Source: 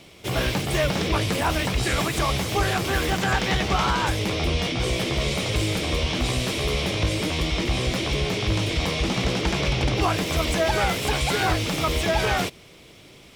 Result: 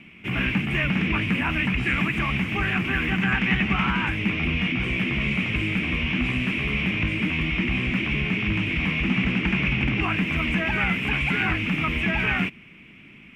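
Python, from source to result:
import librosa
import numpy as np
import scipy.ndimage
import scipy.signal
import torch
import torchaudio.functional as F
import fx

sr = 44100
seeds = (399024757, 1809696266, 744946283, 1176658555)

y = fx.curve_eq(x, sr, hz=(110.0, 220.0, 520.0, 2600.0, 4000.0), db=(0, 12, -11, 12, -17))
y = F.gain(torch.from_numpy(y), -4.0).numpy()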